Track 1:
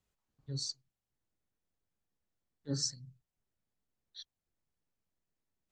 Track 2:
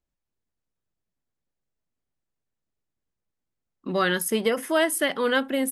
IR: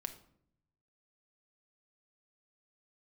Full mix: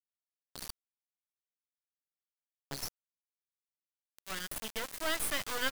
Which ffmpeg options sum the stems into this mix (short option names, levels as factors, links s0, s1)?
-filter_complex "[0:a]highshelf=f=6800:g=-10.5,volume=1.26,asplit=2[s0][s1];[1:a]acrusher=bits=5:mix=0:aa=0.000001,adelay=300,volume=0.668[s2];[s1]apad=whole_len=265096[s3];[s2][s3]sidechaincompress=threshold=0.00224:ratio=10:attack=34:release=1310[s4];[s0][s4]amix=inputs=2:normalize=0,equalizer=f=310:t=o:w=2.6:g=-11,acrusher=bits=3:dc=4:mix=0:aa=0.000001"